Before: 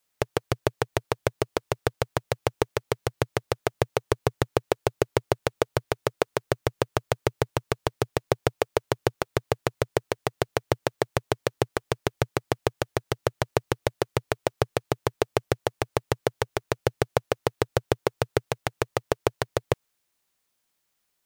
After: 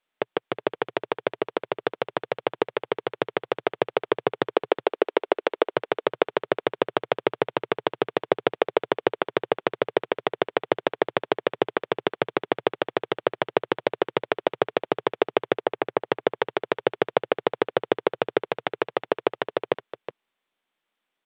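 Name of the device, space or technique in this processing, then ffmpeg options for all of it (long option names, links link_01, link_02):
Bluetooth headset: -filter_complex "[0:a]asettb=1/sr,asplit=3[link_01][link_02][link_03];[link_01]atrim=end=4.544[link_04];[link_02]atrim=start=4.54:end=5.75,asetpts=PTS-STARTPTS,afade=type=in:duration=0.004:curve=qsin,afade=type=out:start_time=1.206:duration=0.004:curve=qsin,highpass=frequency=260:width=0.5412,highpass=frequency=260:width=1.3066[link_05];[link_03]atrim=start=5.746[link_06];[link_04][link_05]acrossfade=duration=0.004:curve1=hsin:curve2=qsin[link_07];[link_07][link_06]acrossfade=duration=0.004:curve1=qsin:curve2=hsin,asettb=1/sr,asplit=3[link_08][link_09][link_10];[link_08]atrim=end=15.544[link_11];[link_09]atrim=start=15.54:end=16.01,asetpts=PTS-STARTPTS,afade=type=in:duration=0.004:curve=qsin,afade=type=out:start_time=0.466:duration=0.004:curve=qsin,equalizer=frequency=3900:width=1.1:gain=-8[link_12];[link_10]atrim=start=16.006[link_13];[link_11][link_12]acrossfade=duration=0.004:curve1=hsin:curve2=qsin[link_14];[link_14][link_13]acrossfade=duration=0.004:curve1=qsin:curve2=hsin,highpass=frequency=200:width=0.5412,highpass=frequency=200:width=1.3066,aecho=1:1:368:0.251,dynaudnorm=framelen=750:gausssize=9:maxgain=11.5dB,aresample=8000,aresample=44100" -ar 32000 -c:a sbc -b:a 64k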